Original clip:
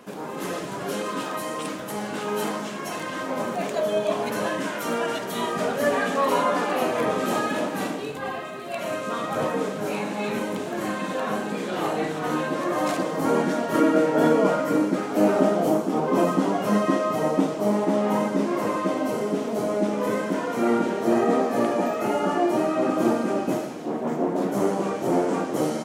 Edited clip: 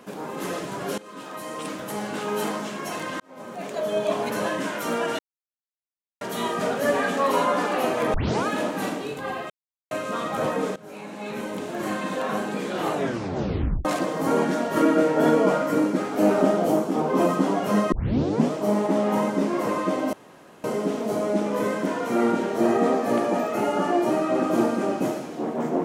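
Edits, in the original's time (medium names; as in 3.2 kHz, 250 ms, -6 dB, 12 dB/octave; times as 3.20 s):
0.98–1.84 s: fade in linear, from -19 dB
3.20–4.06 s: fade in
5.19 s: insert silence 1.02 s
7.12 s: tape start 0.33 s
8.48–8.89 s: mute
9.74–10.88 s: fade in, from -18.5 dB
11.90 s: tape stop 0.93 s
16.90 s: tape start 0.60 s
19.11 s: insert room tone 0.51 s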